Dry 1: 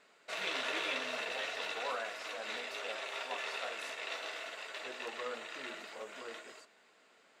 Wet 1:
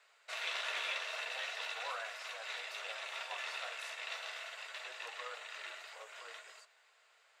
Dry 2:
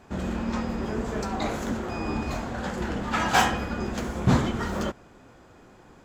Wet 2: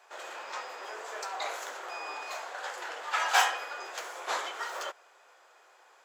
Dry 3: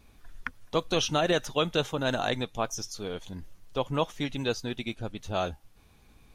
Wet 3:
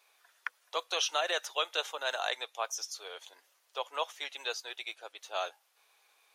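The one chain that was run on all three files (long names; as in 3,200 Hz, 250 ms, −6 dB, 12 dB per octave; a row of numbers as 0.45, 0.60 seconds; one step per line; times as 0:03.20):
Bessel high-pass filter 830 Hz, order 8
level −1 dB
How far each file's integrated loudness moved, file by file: −2.0, −6.0, −4.5 LU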